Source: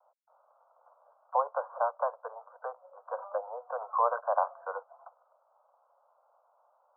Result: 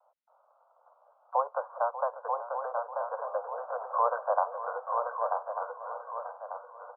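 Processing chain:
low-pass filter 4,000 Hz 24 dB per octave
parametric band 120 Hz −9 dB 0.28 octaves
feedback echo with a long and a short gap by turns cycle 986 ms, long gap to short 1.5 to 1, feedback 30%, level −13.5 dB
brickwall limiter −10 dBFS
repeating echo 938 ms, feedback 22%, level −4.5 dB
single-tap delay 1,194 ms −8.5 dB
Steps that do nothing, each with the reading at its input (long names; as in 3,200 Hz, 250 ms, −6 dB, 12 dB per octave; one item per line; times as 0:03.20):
low-pass filter 4,000 Hz: nothing at its input above 1,600 Hz
parametric band 120 Hz: nothing at its input below 400 Hz
brickwall limiter −10 dBFS: peak of its input −13.0 dBFS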